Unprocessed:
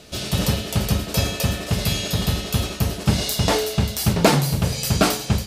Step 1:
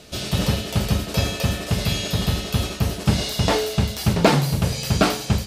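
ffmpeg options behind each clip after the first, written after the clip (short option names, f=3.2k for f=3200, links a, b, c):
-filter_complex "[0:a]acrossover=split=5100[a][b];[b]acompressor=threshold=-32dB:ratio=4:attack=1:release=60[c];[a][c]amix=inputs=2:normalize=0"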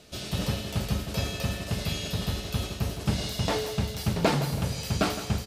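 -af "aecho=1:1:163|326|489|652:0.251|0.111|0.0486|0.0214,volume=-8dB"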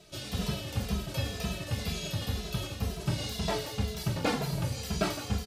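-filter_complex "[0:a]asoftclip=type=tanh:threshold=-14dB,asplit=2[a][b];[b]adelay=2.6,afreqshift=-2[c];[a][c]amix=inputs=2:normalize=1"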